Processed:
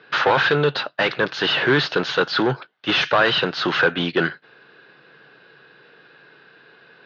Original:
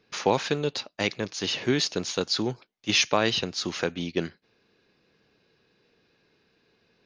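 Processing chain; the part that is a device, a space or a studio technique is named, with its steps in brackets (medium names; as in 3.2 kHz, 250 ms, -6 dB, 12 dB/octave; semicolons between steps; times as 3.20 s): overdrive pedal into a guitar cabinet (overdrive pedal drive 25 dB, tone 5 kHz, clips at -8 dBFS; cabinet simulation 79–3600 Hz, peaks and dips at 97 Hz -5 dB, 140 Hz +10 dB, 220 Hz -4 dB, 1.5 kHz +9 dB, 2.3 kHz -7 dB)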